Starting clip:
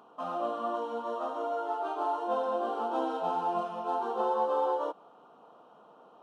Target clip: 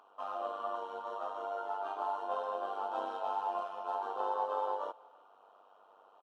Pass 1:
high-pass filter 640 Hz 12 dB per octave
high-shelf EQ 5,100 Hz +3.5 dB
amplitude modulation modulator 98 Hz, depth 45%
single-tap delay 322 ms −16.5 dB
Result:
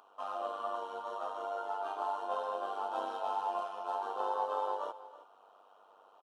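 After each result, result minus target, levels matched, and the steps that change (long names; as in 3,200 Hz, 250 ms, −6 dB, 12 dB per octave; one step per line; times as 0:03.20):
echo-to-direct +10 dB; 8,000 Hz band +6.0 dB
change: single-tap delay 322 ms −26.5 dB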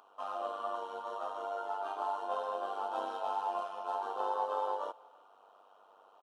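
8,000 Hz band +6.0 dB
change: high-shelf EQ 5,100 Hz −6 dB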